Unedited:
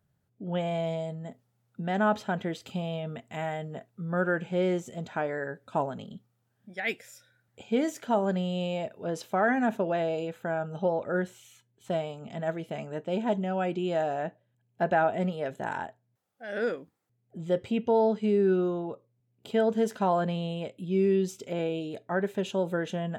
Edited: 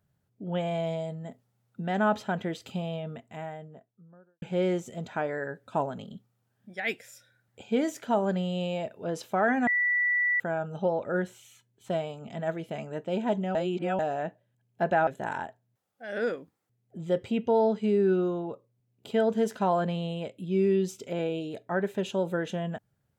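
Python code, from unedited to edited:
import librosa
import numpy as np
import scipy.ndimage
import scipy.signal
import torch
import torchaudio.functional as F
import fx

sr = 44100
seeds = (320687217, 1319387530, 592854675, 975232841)

y = fx.studio_fade_out(x, sr, start_s=2.66, length_s=1.76)
y = fx.edit(y, sr, fx.bleep(start_s=9.67, length_s=0.73, hz=1960.0, db=-22.5),
    fx.reverse_span(start_s=13.55, length_s=0.44),
    fx.cut(start_s=15.07, length_s=0.4), tone=tone)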